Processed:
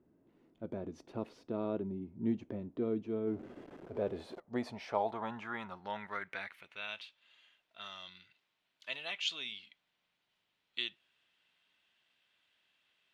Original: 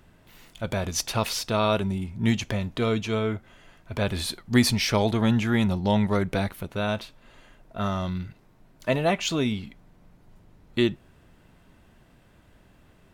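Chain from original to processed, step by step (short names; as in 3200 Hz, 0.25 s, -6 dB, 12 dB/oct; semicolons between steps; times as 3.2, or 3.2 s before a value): 3.27–4.4 zero-crossing step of -29.5 dBFS; band-pass sweep 320 Hz -> 3200 Hz, 3.57–7.19; gain -3.5 dB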